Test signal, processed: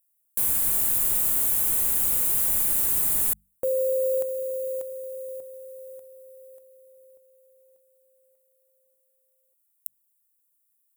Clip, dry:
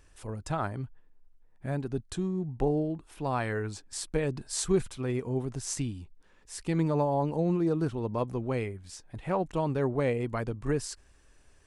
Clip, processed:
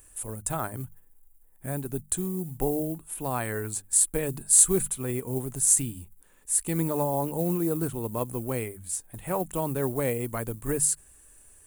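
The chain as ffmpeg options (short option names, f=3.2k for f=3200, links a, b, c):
-af "acrusher=bits=9:mode=log:mix=0:aa=0.000001,aexciter=amount=10.7:drive=7.2:freq=7.7k,bandreject=f=50:t=h:w=6,bandreject=f=100:t=h:w=6,bandreject=f=150:t=h:w=6,bandreject=f=200:t=h:w=6"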